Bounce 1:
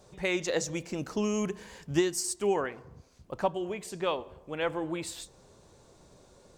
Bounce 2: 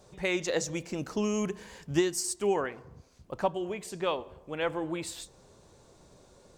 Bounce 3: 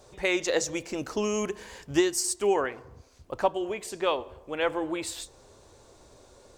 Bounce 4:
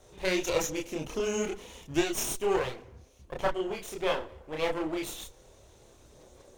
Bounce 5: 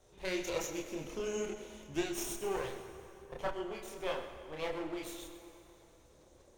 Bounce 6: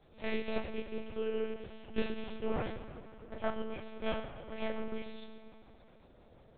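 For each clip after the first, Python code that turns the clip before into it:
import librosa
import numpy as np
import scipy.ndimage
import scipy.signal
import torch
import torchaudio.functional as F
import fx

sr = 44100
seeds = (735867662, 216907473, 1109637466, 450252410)

y1 = x
y2 = fx.peak_eq(y1, sr, hz=170.0, db=-12.0, octaves=0.62)
y2 = y2 * librosa.db_to_amplitude(4.0)
y3 = fx.lower_of_two(y2, sr, delay_ms=0.32)
y3 = fx.chorus_voices(y3, sr, voices=6, hz=1.3, base_ms=29, depth_ms=3.2, mix_pct=45)
y3 = y3 * librosa.db_to_amplitude(1.5)
y4 = y3 + 10.0 ** (-14.0 / 20.0) * np.pad(y3, (int(128 * sr / 1000.0), 0))[:len(y3)]
y4 = fx.rev_plate(y4, sr, seeds[0], rt60_s=3.4, hf_ratio=0.7, predelay_ms=0, drr_db=7.5)
y4 = y4 * librosa.db_to_amplitude(-8.5)
y5 = fx.air_absorb(y4, sr, metres=63.0)
y5 = fx.lpc_monotone(y5, sr, seeds[1], pitch_hz=220.0, order=8)
y5 = y5 * librosa.db_to_amplitude(2.5)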